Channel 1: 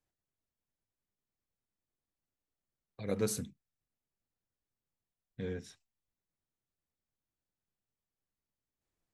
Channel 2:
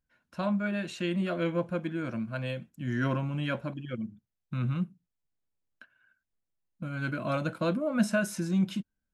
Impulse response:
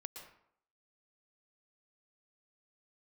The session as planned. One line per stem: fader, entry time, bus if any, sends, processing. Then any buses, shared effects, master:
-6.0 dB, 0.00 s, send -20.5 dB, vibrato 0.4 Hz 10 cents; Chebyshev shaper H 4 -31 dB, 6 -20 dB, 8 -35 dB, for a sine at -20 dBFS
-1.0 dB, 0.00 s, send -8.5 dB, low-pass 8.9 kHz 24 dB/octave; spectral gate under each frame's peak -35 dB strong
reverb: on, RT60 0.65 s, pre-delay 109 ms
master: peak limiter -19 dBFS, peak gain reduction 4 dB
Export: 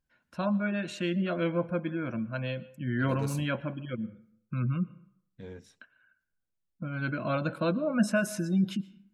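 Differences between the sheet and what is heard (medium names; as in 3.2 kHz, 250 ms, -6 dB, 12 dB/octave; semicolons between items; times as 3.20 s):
stem 2: missing low-pass 8.9 kHz 24 dB/octave; master: missing peak limiter -19 dBFS, peak gain reduction 4 dB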